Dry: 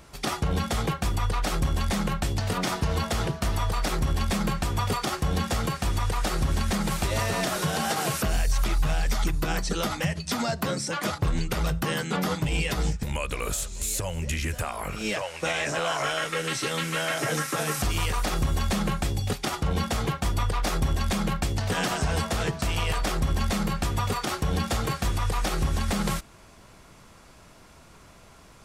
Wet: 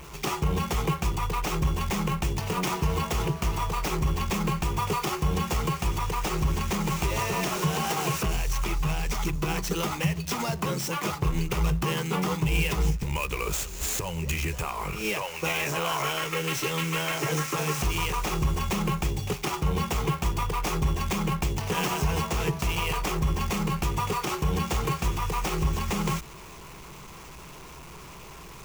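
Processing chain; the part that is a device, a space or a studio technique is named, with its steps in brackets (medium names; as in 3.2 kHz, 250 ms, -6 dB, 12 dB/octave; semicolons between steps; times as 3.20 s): rippled EQ curve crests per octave 0.74, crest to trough 9 dB; early CD player with a faulty converter (jump at every zero crossing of -39.5 dBFS; sampling jitter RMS 0.02 ms); trim -2 dB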